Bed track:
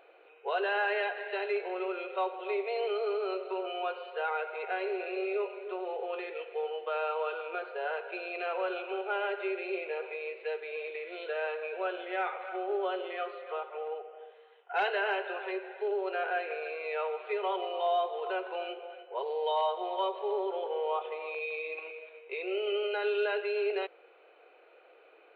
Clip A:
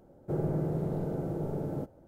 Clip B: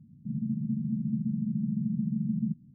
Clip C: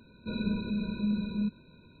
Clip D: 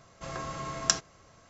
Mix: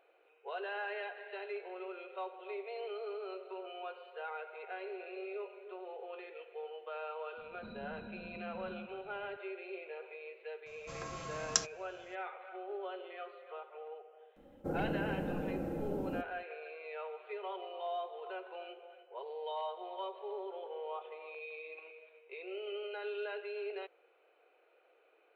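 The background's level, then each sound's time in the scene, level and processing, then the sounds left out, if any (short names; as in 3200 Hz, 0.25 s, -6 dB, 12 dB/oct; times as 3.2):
bed track -10 dB
7.37 add C -9 dB + compressor, threshold -37 dBFS
10.66 add D -7.5 dB + high shelf 5200 Hz +4 dB
14.36 add A -5 dB + comb 3.8 ms, depth 83%
not used: B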